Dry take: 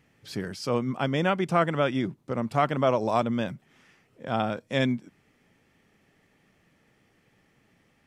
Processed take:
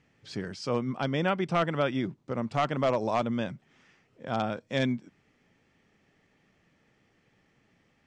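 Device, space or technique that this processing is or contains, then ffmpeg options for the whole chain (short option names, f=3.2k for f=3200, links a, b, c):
synthesiser wavefolder: -filter_complex "[0:a]aeval=exprs='0.211*(abs(mod(val(0)/0.211+3,4)-2)-1)':c=same,lowpass=f=7.5k:w=0.5412,lowpass=f=7.5k:w=1.3066,asettb=1/sr,asplit=3[a][b][c];[a]atrim=end=0.804[d];[b]atrim=start=0.8:end=2.04,asetpts=PTS-STARTPTS,afade=t=in:d=0.004:c=qsin,afade=t=out:st=1.236:d=0.004:c=qsin,bandreject=f=6.8k:w=5.4[e];[c]atrim=start=2.036[f];[d][e]acrossfade=d=0.004:c1=hsin:c2=qsin[g];[g][f]acrossfade=d=0.004:c1=qsin:c2=hsin,volume=-2.5dB"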